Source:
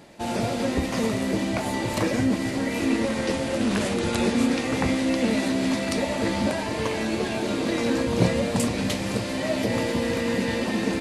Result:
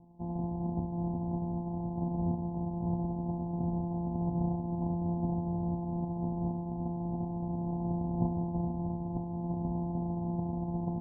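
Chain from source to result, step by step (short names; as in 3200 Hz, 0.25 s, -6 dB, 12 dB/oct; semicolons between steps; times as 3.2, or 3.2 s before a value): sample sorter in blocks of 256 samples; bell 540 Hz -14 dB 0.51 oct; in parallel at -4 dB: hard clip -25 dBFS, distortion -9 dB; on the sum: Chebyshev low-pass 1000 Hz, order 10; resonator 240 Hz, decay 0.16 s, harmonics odd, mix 80%; gain +2 dB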